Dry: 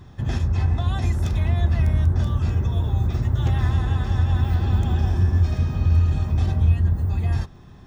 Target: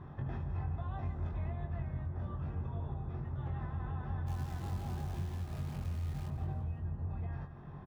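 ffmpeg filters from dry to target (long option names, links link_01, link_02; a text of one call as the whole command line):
ffmpeg -i in.wav -filter_complex "[0:a]lowpass=1200,lowshelf=frequency=380:gain=-11,asplit=3[link_01][link_02][link_03];[link_01]afade=type=out:start_time=4.26:duration=0.02[link_04];[link_02]acrusher=bits=8:dc=4:mix=0:aa=0.000001,afade=type=in:start_time=4.26:duration=0.02,afade=type=out:start_time=6.27:duration=0.02[link_05];[link_03]afade=type=in:start_time=6.27:duration=0.02[link_06];[link_04][link_05][link_06]amix=inputs=3:normalize=0,equalizer=frequency=150:width_type=o:width=0.25:gain=11,acompressor=threshold=-41dB:ratio=5,asplit=2[link_07][link_08];[link_08]adelay=22,volume=-5dB[link_09];[link_07][link_09]amix=inputs=2:normalize=0,aecho=1:1:169|338|507|676:0.282|0.116|0.0474|0.0194,volume=2dB" out.wav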